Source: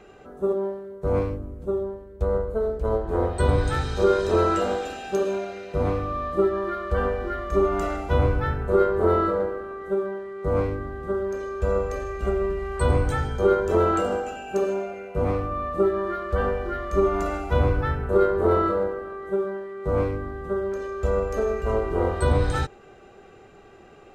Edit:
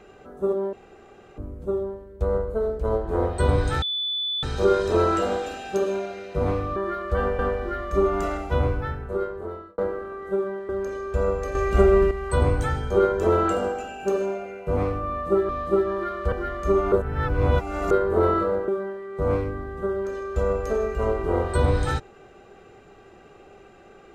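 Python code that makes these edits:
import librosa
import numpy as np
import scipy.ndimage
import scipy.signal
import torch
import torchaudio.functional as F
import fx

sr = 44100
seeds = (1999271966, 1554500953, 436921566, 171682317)

y = fx.edit(x, sr, fx.room_tone_fill(start_s=0.73, length_s=0.65),
    fx.insert_tone(at_s=3.82, length_s=0.61, hz=3480.0, db=-24.0),
    fx.swap(start_s=6.15, length_s=0.83, other_s=15.97, other_length_s=0.63),
    fx.fade_out_span(start_s=7.91, length_s=1.46),
    fx.cut(start_s=10.28, length_s=0.89),
    fx.clip_gain(start_s=12.03, length_s=0.56, db=8.0),
    fx.reverse_span(start_s=17.2, length_s=0.99),
    fx.cut(start_s=18.96, length_s=0.39), tone=tone)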